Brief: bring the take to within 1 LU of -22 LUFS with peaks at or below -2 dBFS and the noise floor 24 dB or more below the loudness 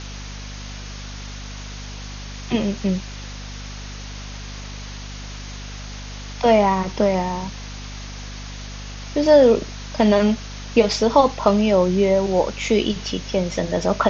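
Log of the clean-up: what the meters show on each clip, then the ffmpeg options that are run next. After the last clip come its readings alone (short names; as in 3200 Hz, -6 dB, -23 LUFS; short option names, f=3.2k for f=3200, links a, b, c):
hum 50 Hz; harmonics up to 250 Hz; hum level -32 dBFS; noise floor -34 dBFS; noise floor target -43 dBFS; loudness -19.0 LUFS; peak -2.5 dBFS; loudness target -22.0 LUFS
-> -af "bandreject=f=50:t=h:w=4,bandreject=f=100:t=h:w=4,bandreject=f=150:t=h:w=4,bandreject=f=200:t=h:w=4,bandreject=f=250:t=h:w=4"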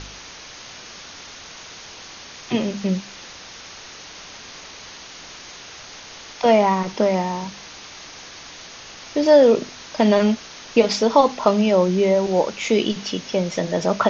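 hum none; noise floor -40 dBFS; noise floor target -44 dBFS
-> -af "afftdn=nr=6:nf=-40"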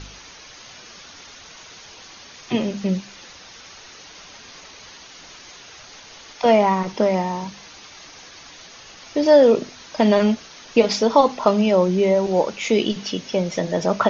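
noise floor -43 dBFS; noise floor target -44 dBFS
-> -af "afftdn=nr=6:nf=-43"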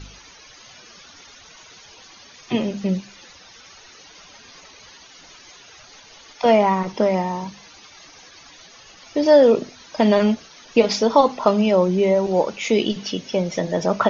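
noise floor -47 dBFS; loudness -19.5 LUFS; peak -2.5 dBFS; loudness target -22.0 LUFS
-> -af "volume=-2.5dB"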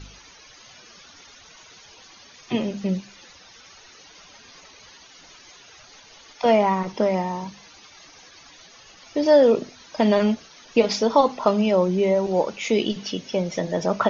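loudness -22.0 LUFS; peak -5.0 dBFS; noise floor -49 dBFS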